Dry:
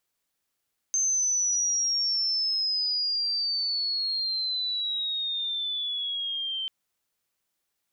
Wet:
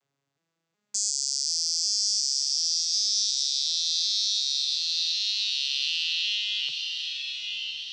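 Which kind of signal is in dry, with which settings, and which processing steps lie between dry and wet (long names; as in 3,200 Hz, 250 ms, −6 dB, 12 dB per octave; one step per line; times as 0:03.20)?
glide logarithmic 6,300 Hz → 3,100 Hz −22 dBFS → −28.5 dBFS 5.74 s
vocoder with an arpeggio as carrier minor triad, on C#3, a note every 367 ms
feedback delay with all-pass diffusion 977 ms, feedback 51%, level −4 dB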